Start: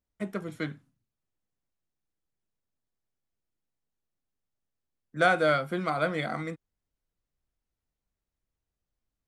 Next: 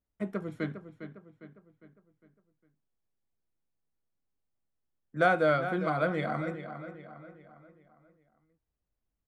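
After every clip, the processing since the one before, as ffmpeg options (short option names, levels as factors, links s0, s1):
-filter_complex "[0:a]highshelf=f=2600:g=-11.5,asplit=2[s0][s1];[s1]adelay=405,lowpass=f=4000:p=1,volume=0.299,asplit=2[s2][s3];[s3]adelay=405,lowpass=f=4000:p=1,volume=0.47,asplit=2[s4][s5];[s5]adelay=405,lowpass=f=4000:p=1,volume=0.47,asplit=2[s6][s7];[s7]adelay=405,lowpass=f=4000:p=1,volume=0.47,asplit=2[s8][s9];[s9]adelay=405,lowpass=f=4000:p=1,volume=0.47[s10];[s0][s2][s4][s6][s8][s10]amix=inputs=6:normalize=0"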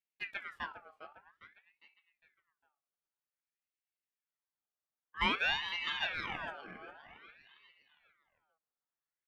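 -af "highpass=160,aeval=exprs='val(0)*sin(2*PI*1700*n/s+1700*0.45/0.52*sin(2*PI*0.52*n/s))':c=same,volume=0.596"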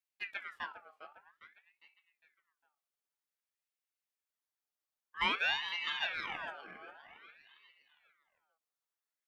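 -af "lowshelf=f=250:g=-12"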